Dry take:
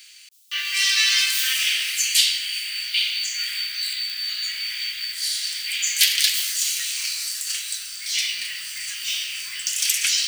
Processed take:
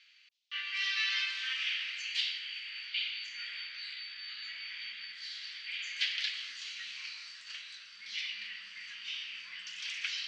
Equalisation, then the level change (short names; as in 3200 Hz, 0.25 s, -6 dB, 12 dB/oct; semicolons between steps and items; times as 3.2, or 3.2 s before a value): steep high-pass 160 Hz 36 dB/oct; LPF 4600 Hz 12 dB/oct; air absorption 190 m; -8.0 dB